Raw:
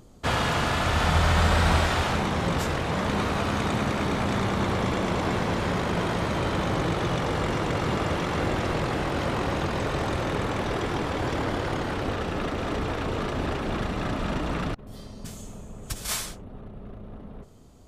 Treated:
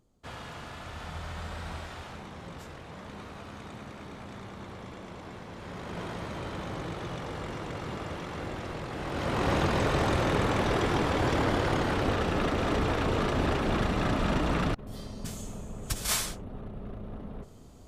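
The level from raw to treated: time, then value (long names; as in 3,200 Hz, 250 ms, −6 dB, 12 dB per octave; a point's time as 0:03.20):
0:05.51 −17.5 dB
0:06.01 −10.5 dB
0:08.89 −10.5 dB
0:09.51 +1 dB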